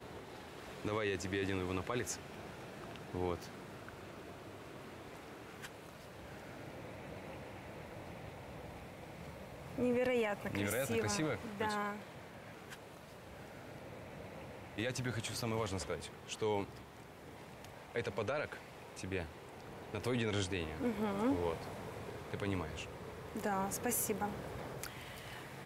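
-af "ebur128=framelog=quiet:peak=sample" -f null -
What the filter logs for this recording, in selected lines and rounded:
Integrated loudness:
  I:         -40.6 LUFS
  Threshold: -51.1 LUFS
Loudness range:
  LRA:        12.0 LU
  Threshold: -61.2 LUFS
  LRA low:   -49.6 LUFS
  LRA high:  -37.7 LUFS
Sample peak:
  Peak:      -25.3 dBFS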